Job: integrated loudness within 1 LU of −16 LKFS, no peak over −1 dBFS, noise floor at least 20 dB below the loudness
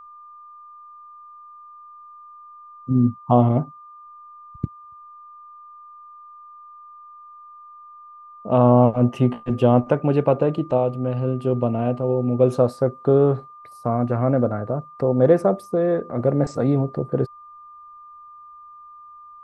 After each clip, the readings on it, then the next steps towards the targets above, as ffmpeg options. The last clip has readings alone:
interfering tone 1,200 Hz; level of the tone −41 dBFS; integrated loudness −20.5 LKFS; sample peak −2.5 dBFS; target loudness −16.0 LKFS
→ -af "bandreject=frequency=1200:width=30"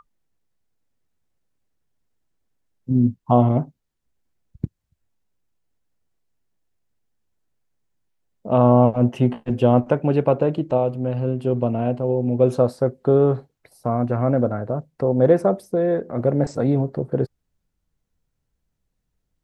interfering tone none found; integrated loudness −20.5 LKFS; sample peak −2.5 dBFS; target loudness −16.0 LKFS
→ -af "volume=4.5dB,alimiter=limit=-1dB:level=0:latency=1"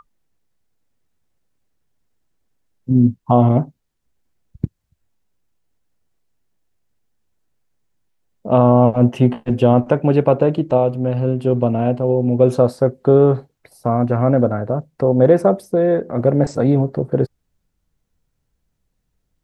integrated loudness −16.5 LKFS; sample peak −1.0 dBFS; background noise floor −72 dBFS

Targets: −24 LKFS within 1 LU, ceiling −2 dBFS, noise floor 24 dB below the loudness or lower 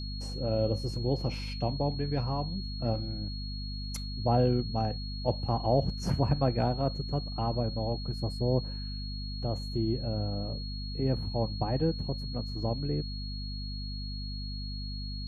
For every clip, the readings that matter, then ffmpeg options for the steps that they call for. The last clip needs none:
mains hum 50 Hz; hum harmonics up to 250 Hz; level of the hum −35 dBFS; interfering tone 4,300 Hz; level of the tone −42 dBFS; integrated loudness −32.0 LKFS; sample peak −12.5 dBFS; target loudness −24.0 LKFS
→ -af "bandreject=frequency=50:width_type=h:width=4,bandreject=frequency=100:width_type=h:width=4,bandreject=frequency=150:width_type=h:width=4,bandreject=frequency=200:width_type=h:width=4,bandreject=frequency=250:width_type=h:width=4"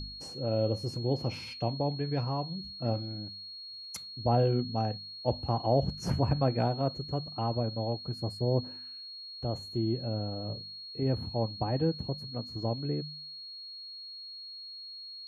mains hum none found; interfering tone 4,300 Hz; level of the tone −42 dBFS
→ -af "bandreject=frequency=4300:width=30"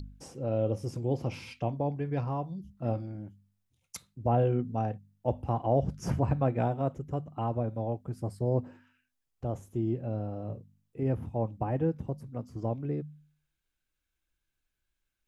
interfering tone none found; integrated loudness −32.5 LKFS; sample peak −13.5 dBFS; target loudness −24.0 LKFS
→ -af "volume=8.5dB"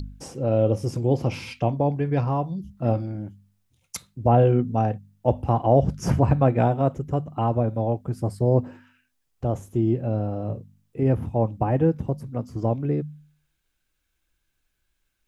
integrated loudness −24.0 LKFS; sample peak −5.0 dBFS; background noise floor −75 dBFS

